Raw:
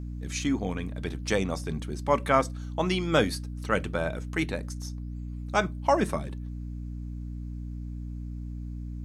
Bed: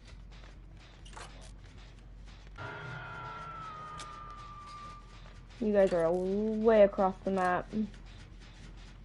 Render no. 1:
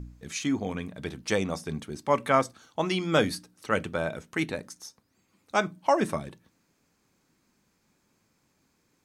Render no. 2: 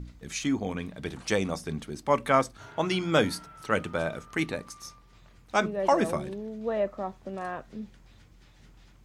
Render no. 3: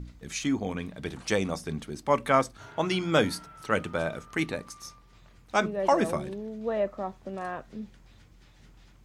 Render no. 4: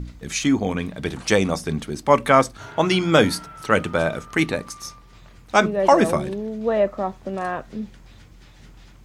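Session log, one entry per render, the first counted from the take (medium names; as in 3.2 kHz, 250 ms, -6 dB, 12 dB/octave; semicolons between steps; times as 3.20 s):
de-hum 60 Hz, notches 5
add bed -5.5 dB
no audible change
trim +8.5 dB; peak limiter -2 dBFS, peak gain reduction 2 dB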